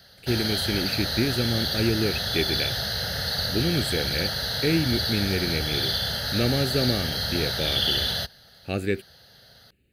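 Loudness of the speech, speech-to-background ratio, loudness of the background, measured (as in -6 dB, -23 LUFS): -28.0 LUFS, -2.5 dB, -25.5 LUFS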